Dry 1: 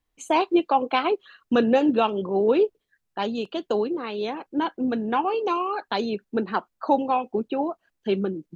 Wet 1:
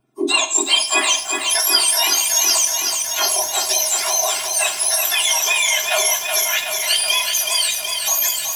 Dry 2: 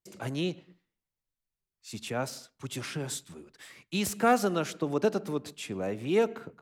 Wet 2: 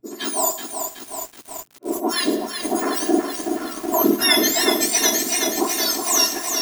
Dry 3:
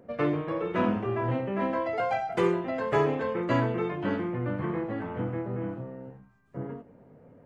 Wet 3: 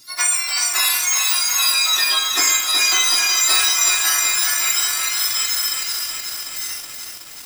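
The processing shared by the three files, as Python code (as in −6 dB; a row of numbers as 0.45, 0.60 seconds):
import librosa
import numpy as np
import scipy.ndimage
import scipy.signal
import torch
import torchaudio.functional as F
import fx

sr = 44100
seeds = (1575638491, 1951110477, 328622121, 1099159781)

p1 = fx.octave_mirror(x, sr, pivot_hz=1600.0)
p2 = p1 + 0.93 * np.pad(p1, (int(2.9 * sr / 1000.0), 0))[:len(p1)]
p3 = fx.over_compress(p2, sr, threshold_db=-29.0, ratio=-0.5)
p4 = p2 + (p3 * librosa.db_to_amplitude(-2.5))
p5 = fx.rev_schroeder(p4, sr, rt60_s=0.7, comb_ms=29, drr_db=10.5)
p6 = fx.echo_crushed(p5, sr, ms=373, feedback_pct=80, bits=7, wet_db=-5.5)
y = p6 * 10.0 ** (-3 / 20.0) / np.max(np.abs(p6))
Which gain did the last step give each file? +4.5, +6.0, +6.5 decibels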